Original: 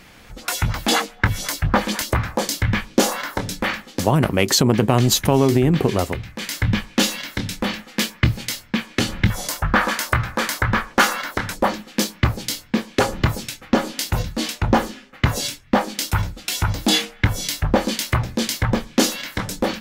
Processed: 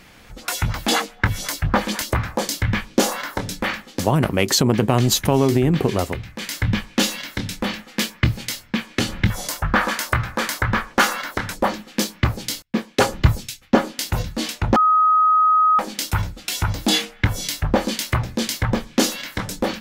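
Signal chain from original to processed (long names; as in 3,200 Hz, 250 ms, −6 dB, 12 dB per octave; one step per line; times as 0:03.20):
0:12.62–0:13.99: multiband upward and downward expander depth 100%
0:14.76–0:15.79: beep over 1,260 Hz −11 dBFS
level −1 dB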